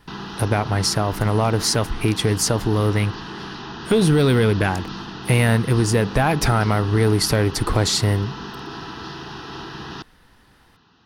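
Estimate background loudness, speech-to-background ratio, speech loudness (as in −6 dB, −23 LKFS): −33.0 LKFS, 13.0 dB, −20.0 LKFS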